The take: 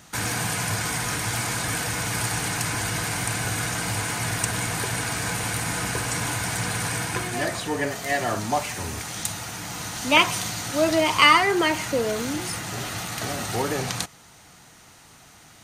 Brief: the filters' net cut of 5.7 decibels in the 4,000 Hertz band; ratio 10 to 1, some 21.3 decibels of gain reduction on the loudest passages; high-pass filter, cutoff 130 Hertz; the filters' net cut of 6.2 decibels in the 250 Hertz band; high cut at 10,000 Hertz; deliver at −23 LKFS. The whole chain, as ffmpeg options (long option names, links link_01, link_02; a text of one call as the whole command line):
ffmpeg -i in.wav -af "highpass=130,lowpass=10000,equalizer=frequency=250:width_type=o:gain=-8.5,equalizer=frequency=4000:width_type=o:gain=-8.5,acompressor=threshold=-35dB:ratio=10,volume=14.5dB" out.wav